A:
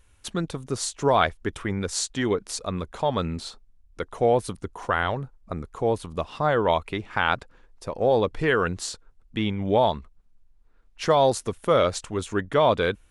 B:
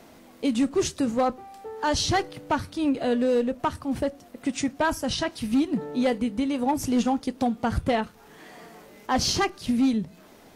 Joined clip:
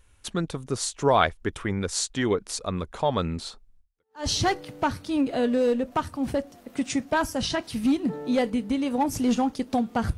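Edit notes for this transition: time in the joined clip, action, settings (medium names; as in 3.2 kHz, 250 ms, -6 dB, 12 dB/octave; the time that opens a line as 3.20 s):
A
4.03 s: go over to B from 1.71 s, crossfade 0.48 s exponential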